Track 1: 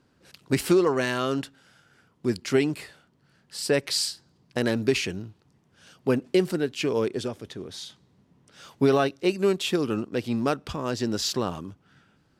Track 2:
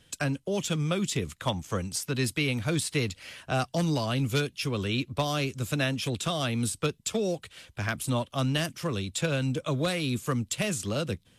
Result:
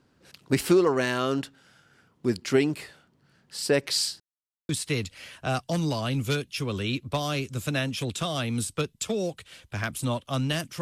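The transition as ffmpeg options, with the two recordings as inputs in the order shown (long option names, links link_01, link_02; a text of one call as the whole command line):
ffmpeg -i cue0.wav -i cue1.wav -filter_complex "[0:a]apad=whole_dur=10.81,atrim=end=10.81,asplit=2[link_01][link_02];[link_01]atrim=end=4.2,asetpts=PTS-STARTPTS,afade=type=out:start_time=4.196:duration=0.004:curve=hsin[link_03];[link_02]atrim=start=4.2:end=4.69,asetpts=PTS-STARTPTS,volume=0[link_04];[1:a]atrim=start=2.74:end=8.86,asetpts=PTS-STARTPTS,afade=type=in:duration=0.004:curve=hsin[link_05];[link_03][link_04][link_05]concat=n=3:v=0:a=1" out.wav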